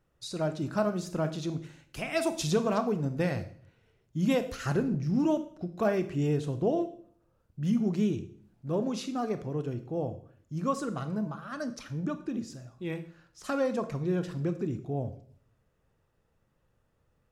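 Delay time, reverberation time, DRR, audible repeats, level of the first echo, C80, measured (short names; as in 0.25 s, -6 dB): none, 0.55 s, 9.5 dB, none, none, 16.5 dB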